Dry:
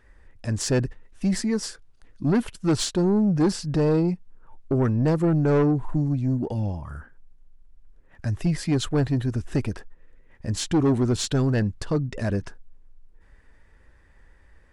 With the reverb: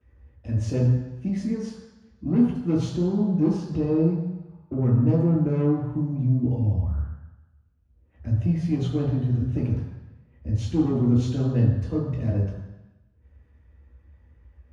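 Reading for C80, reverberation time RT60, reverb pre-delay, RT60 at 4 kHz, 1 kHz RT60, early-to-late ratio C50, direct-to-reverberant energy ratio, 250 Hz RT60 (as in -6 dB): 5.0 dB, 1.0 s, 3 ms, 1.1 s, 1.1 s, 2.0 dB, -13.5 dB, 1.0 s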